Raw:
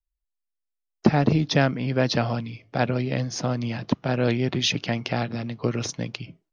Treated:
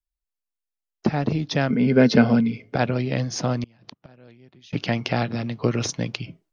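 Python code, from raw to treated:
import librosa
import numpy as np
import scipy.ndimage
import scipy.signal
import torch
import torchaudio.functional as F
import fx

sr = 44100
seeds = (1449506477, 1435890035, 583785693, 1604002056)

y = fx.gate_flip(x, sr, shuts_db=-22.0, range_db=-29, at=(3.63, 4.73))
y = fx.rider(y, sr, range_db=4, speed_s=2.0)
y = fx.small_body(y, sr, hz=(230.0, 420.0, 1500.0, 2100.0), ring_ms=45, db=15, at=(1.7, 2.76))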